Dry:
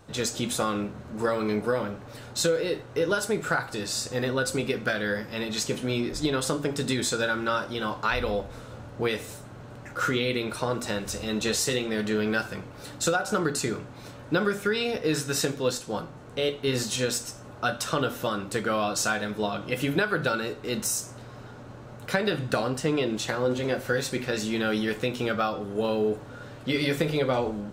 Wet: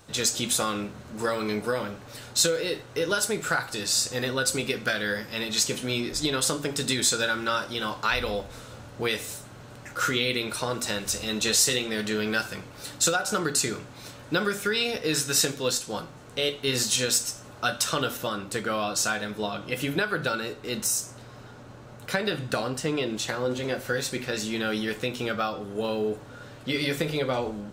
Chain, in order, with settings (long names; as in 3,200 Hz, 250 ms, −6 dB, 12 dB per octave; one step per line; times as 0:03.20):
high-shelf EQ 2,100 Hz +10 dB, from 0:18.17 +5 dB
level −2.5 dB